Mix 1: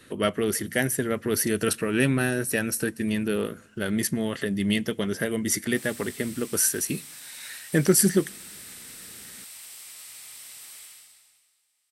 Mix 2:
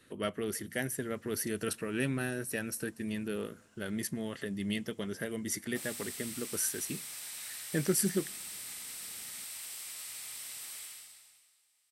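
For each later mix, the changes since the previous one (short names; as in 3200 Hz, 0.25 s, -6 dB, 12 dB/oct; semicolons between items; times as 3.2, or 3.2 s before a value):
speech -10.0 dB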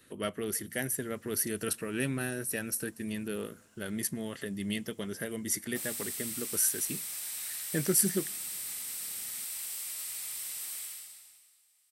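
master: add high shelf 9700 Hz +11 dB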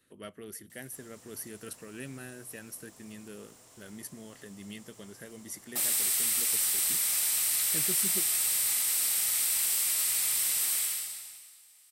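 speech -10.0 dB; background +10.5 dB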